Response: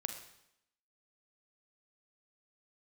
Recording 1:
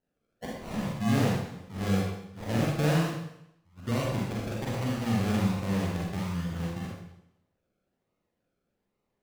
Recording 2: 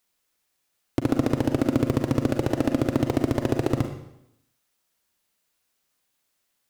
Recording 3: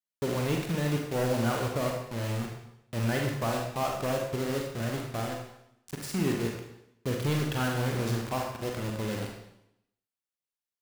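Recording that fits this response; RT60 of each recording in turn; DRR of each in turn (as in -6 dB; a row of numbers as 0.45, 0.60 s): 2; 0.80, 0.80, 0.80 s; -4.0, 5.5, 0.5 dB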